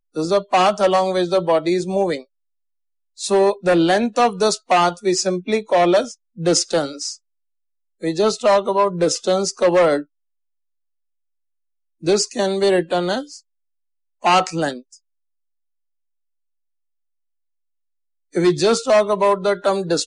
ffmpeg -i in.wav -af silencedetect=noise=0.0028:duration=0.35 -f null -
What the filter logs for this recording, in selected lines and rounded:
silence_start: 2.25
silence_end: 3.17 | silence_duration: 0.92
silence_start: 7.17
silence_end: 8.00 | silence_duration: 0.83
silence_start: 10.05
silence_end: 12.01 | silence_duration: 1.96
silence_start: 13.41
silence_end: 14.22 | silence_duration: 0.81
silence_start: 14.98
silence_end: 18.32 | silence_duration: 3.34